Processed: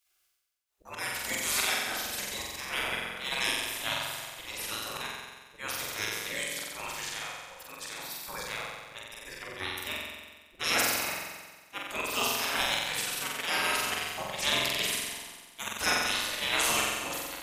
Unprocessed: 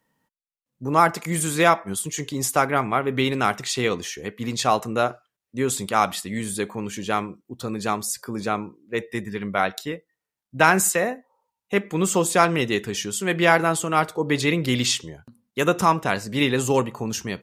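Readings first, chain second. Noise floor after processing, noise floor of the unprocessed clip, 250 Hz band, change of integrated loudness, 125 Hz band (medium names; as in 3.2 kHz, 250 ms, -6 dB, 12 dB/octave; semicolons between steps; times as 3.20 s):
-59 dBFS, under -85 dBFS, -19.5 dB, -8.0 dB, -20.5 dB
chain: spectral gate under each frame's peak -20 dB weak; slow attack 169 ms; flutter echo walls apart 7.8 m, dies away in 1.4 s; trim +5 dB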